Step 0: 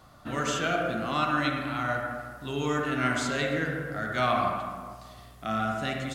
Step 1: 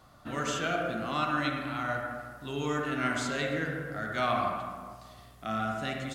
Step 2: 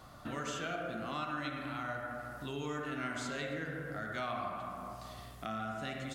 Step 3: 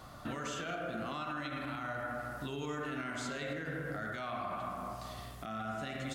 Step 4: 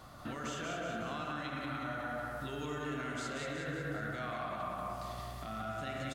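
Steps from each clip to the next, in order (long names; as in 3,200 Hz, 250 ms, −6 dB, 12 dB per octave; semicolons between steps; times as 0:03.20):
hum removal 62.84 Hz, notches 3; level −3 dB
downward compressor 2.5 to 1, threshold −45 dBFS, peak gain reduction 14 dB; level +3.5 dB
brickwall limiter −33 dBFS, peak gain reduction 9 dB; level +3 dB
repeating echo 184 ms, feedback 54%, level −4 dB; level −2 dB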